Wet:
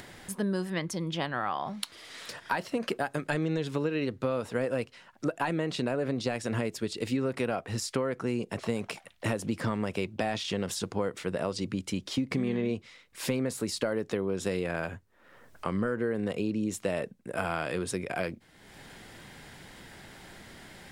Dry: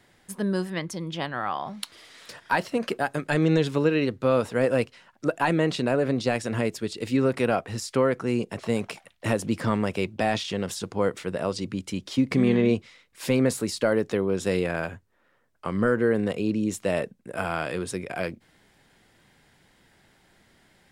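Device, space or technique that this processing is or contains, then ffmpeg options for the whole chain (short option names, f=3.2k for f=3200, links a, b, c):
upward and downward compression: -af "acompressor=mode=upward:threshold=-37dB:ratio=2.5,acompressor=threshold=-26dB:ratio=6"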